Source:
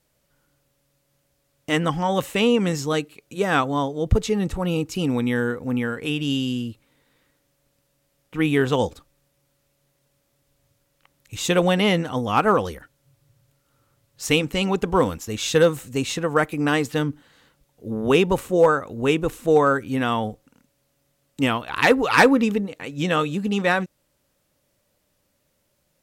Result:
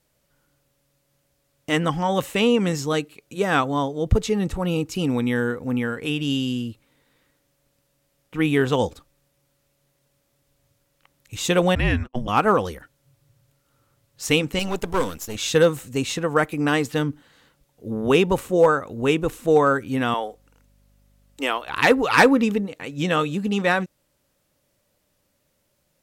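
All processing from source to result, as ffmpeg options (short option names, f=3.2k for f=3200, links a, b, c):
-filter_complex "[0:a]asettb=1/sr,asplit=3[a][b][c];[a]atrim=end=11.754[d];[b]atrim=start=11.75:end=12.28,asetpts=PTS-STARTPTS,afade=t=in:d=0.004:c=qsin,afade=t=out:st=0.526:d=0.004:c=qsin,agate=range=-55dB:threshold=-27dB:ratio=16:release=100:detection=peak,bass=f=250:g=-3,treble=f=4k:g=-11,afreqshift=-260[e];[c]atrim=start=12.276[f];[d][e]acrossfade=d=0.004:c1=hsin:c2=qsin[g];[g][f]acrossfade=d=0.004:c1=qsin:c2=hsin,asettb=1/sr,asplit=3[h][i][j];[h]atrim=end=14.594[k];[i]atrim=start=14.59:end=15.36,asetpts=PTS-STARTPTS,afade=t=in:d=0.004:c=qsin,afade=t=out:st=0.766:d=0.004:c=qsin,aeval=exprs='if(lt(val(0),0),0.251*val(0),val(0))':c=same,aemphasis=mode=production:type=cd[l];[j]atrim=start=15.356[m];[k][l]acrossfade=d=0.004:c1=hsin:c2=qsin[n];[n][m]acrossfade=d=0.004:c1=qsin:c2=hsin,asettb=1/sr,asplit=3[o][p][q];[o]atrim=end=20.144[r];[p]atrim=start=20.14:end=21.67,asetpts=PTS-STARTPTS,afade=t=in:d=0.004:c=qsin,afade=t=out:st=1.526:d=0.004:c=qsin,highpass=f=350:w=0.5412,highpass=f=350:w=1.3066,aeval=exprs='val(0)+0.00126*(sin(2*PI*50*n/s)+sin(2*PI*2*50*n/s)/2+sin(2*PI*3*50*n/s)/3+sin(2*PI*4*50*n/s)/4+sin(2*PI*5*50*n/s)/5)':c=same[s];[q]atrim=start=21.666[t];[r][s]acrossfade=d=0.004:c1=hsin:c2=qsin[u];[u][t]acrossfade=d=0.004:c1=qsin:c2=hsin"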